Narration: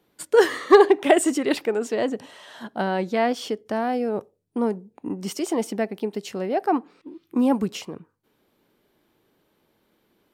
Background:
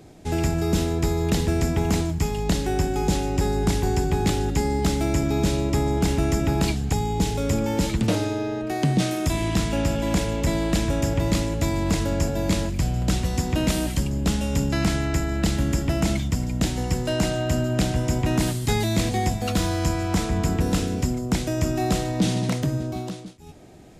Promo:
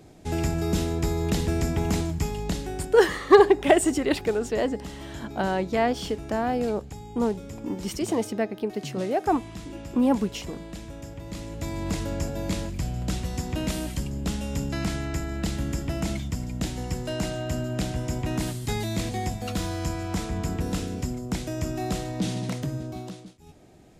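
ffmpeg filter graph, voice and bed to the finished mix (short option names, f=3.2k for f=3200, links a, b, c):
-filter_complex "[0:a]adelay=2600,volume=-1.5dB[a];[1:a]volume=7.5dB,afade=t=out:st=2.17:d=0.91:silence=0.211349,afade=t=in:st=11.26:d=0.64:silence=0.298538[b];[a][b]amix=inputs=2:normalize=0"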